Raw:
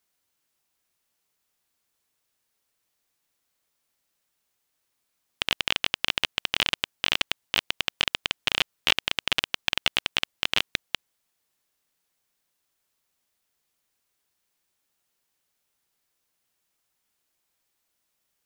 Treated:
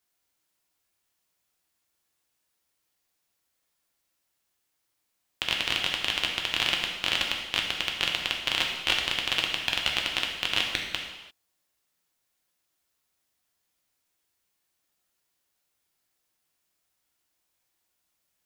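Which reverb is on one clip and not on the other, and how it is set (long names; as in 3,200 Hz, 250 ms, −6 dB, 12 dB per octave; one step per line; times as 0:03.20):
reverb whose tail is shaped and stops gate 370 ms falling, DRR 0 dB
level −3.5 dB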